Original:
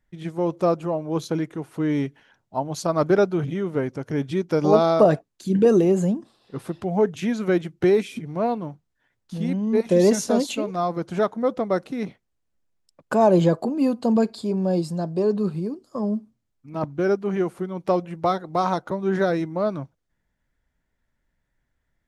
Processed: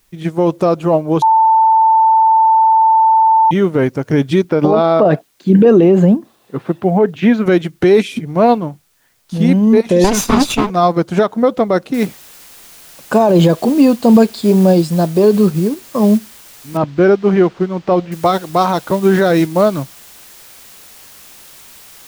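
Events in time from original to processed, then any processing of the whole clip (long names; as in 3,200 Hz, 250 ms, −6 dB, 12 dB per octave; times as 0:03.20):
0:01.22–0:03.51: beep over 889 Hz −20.5 dBFS
0:04.44–0:07.46: band-pass filter 120–2,700 Hz
0:10.04–0:10.70: lower of the sound and its delayed copy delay 0.81 ms
0:11.94: noise floor change −68 dB −48 dB
0:16.77–0:18.12: high-frequency loss of the air 180 metres
whole clip: dynamic equaliser 3,300 Hz, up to +4 dB, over −43 dBFS, Q 1.4; boost into a limiter +15.5 dB; expander for the loud parts 1.5 to 1, over −19 dBFS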